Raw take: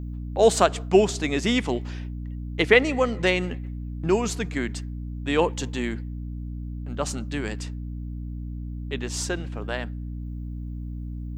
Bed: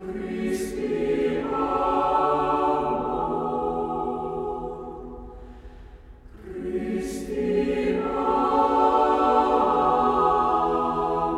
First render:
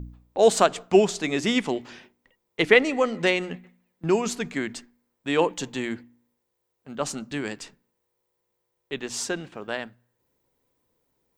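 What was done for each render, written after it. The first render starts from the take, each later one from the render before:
hum removal 60 Hz, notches 5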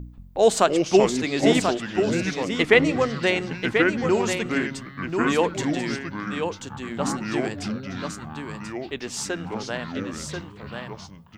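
single-tap delay 1,037 ms −6 dB
delay with pitch and tempo change per echo 178 ms, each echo −5 semitones, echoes 3, each echo −6 dB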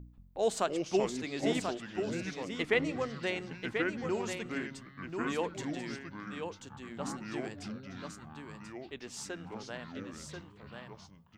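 level −12.5 dB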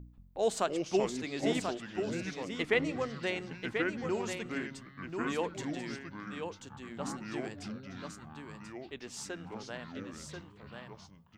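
no processing that can be heard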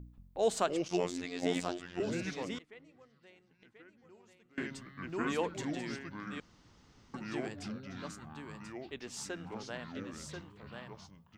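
0:00.88–0:02.00: phases set to zero 88.3 Hz
0:02.58–0:04.58: gate with flip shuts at −34 dBFS, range −26 dB
0:06.40–0:07.14: fill with room tone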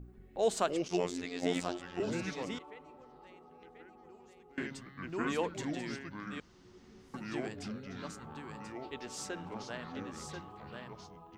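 mix in bed −31 dB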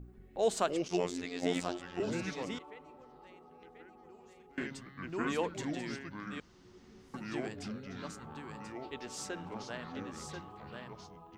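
0:04.15–0:04.64: double-tracking delay 35 ms −7 dB

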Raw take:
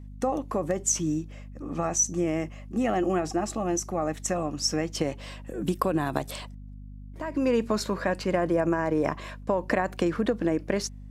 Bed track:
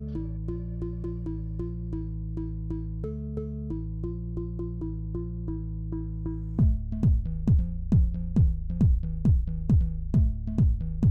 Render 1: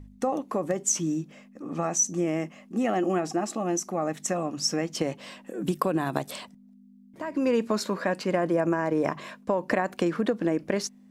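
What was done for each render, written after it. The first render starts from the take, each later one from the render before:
hum removal 50 Hz, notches 3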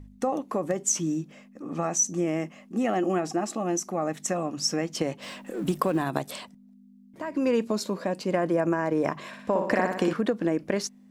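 0:05.22–0:06.03: mu-law and A-law mismatch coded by mu
0:07.64–0:08.32: parametric band 1,600 Hz −9.5 dB 1.3 octaves
0:09.27–0:10.13: flutter between parallel walls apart 10.3 metres, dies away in 0.71 s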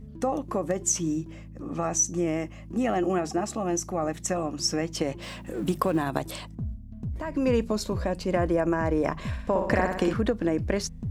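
mix in bed track −11 dB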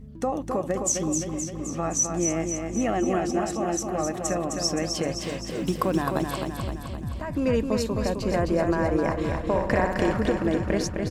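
repeating echo 260 ms, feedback 59%, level −5 dB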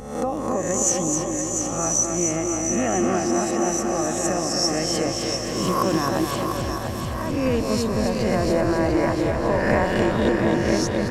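peak hold with a rise ahead of every peak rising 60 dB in 0.79 s
echo with a time of its own for lows and highs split 460 Hz, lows 268 ms, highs 696 ms, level −6 dB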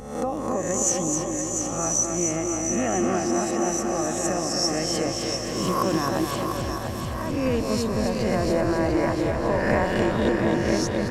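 level −2 dB

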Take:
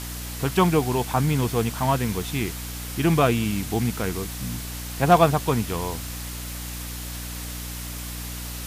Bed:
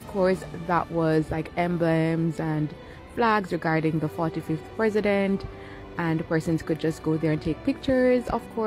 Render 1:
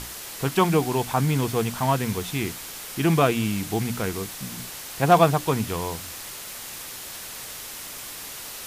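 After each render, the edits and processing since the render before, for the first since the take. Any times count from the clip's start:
mains-hum notches 60/120/180/240/300 Hz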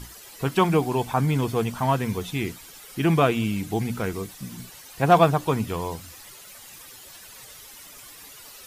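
broadband denoise 12 dB, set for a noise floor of −38 dBFS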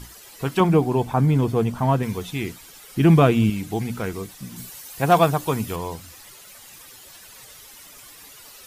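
0:00.60–0:02.03: tilt shelving filter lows +5 dB
0:02.96–0:03.50: low-shelf EQ 390 Hz +9 dB
0:04.56–0:05.76: high-shelf EQ 7,000 Hz +9 dB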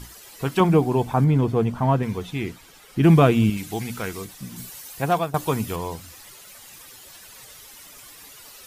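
0:01.24–0:03.04: high-shelf EQ 4,900 Hz −9 dB
0:03.57–0:04.25: tilt shelving filter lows −4 dB, about 1,100 Hz
0:04.89–0:05.34: fade out, to −16 dB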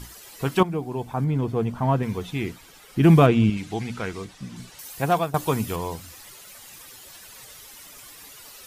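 0:00.63–0:02.29: fade in, from −13 dB
0:03.26–0:04.79: high-frequency loss of the air 79 metres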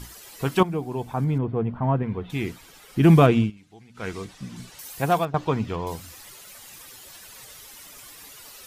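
0:01.38–0:02.30: high-frequency loss of the air 490 metres
0:03.38–0:04.08: duck −20 dB, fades 0.14 s
0:05.25–0:05.87: high-frequency loss of the air 170 metres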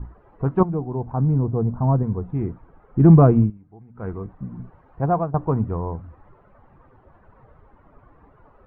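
low-pass filter 1,200 Hz 24 dB per octave
low-shelf EQ 130 Hz +11 dB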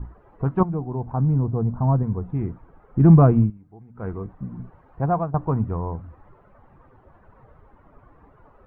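dynamic equaliser 410 Hz, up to −4 dB, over −30 dBFS, Q 1.1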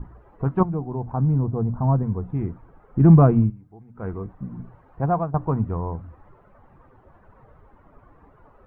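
mains-hum notches 60/120 Hz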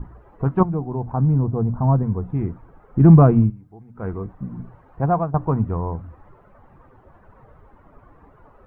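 level +2.5 dB
brickwall limiter −2 dBFS, peak gain reduction 1 dB

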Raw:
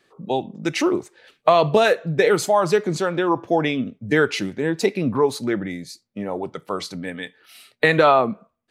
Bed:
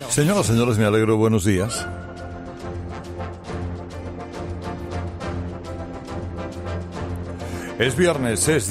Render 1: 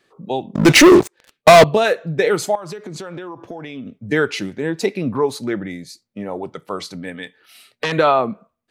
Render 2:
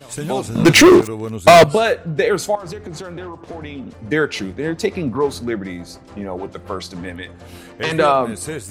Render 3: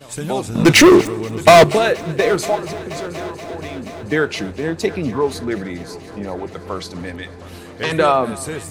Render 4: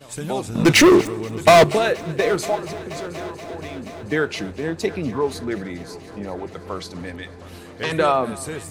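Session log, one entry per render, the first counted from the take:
0:00.55–0:01.64: leveller curve on the samples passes 5; 0:02.55–0:04.07: downward compressor 16 to 1, threshold −27 dBFS; 0:07.23–0:07.92: saturating transformer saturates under 3,300 Hz
mix in bed −9 dB
echo machine with several playback heads 239 ms, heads first and third, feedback 74%, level −20 dB
level −3.5 dB

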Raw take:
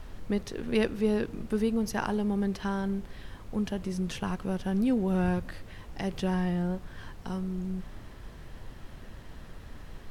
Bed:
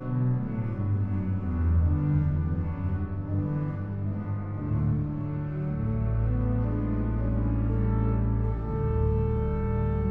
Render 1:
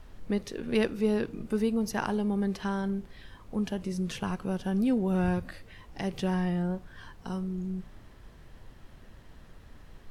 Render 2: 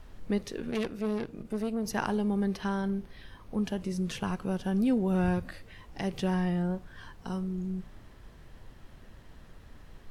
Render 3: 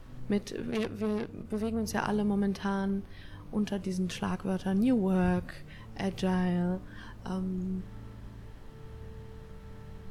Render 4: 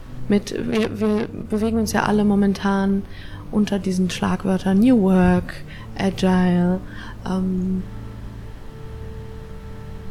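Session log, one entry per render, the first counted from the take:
noise reduction from a noise print 6 dB
0:00.71–0:01.85: tube saturation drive 26 dB, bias 0.75; 0:02.44–0:03.65: notch filter 7,400 Hz, Q 5.4
mix in bed −21.5 dB
level +11.5 dB

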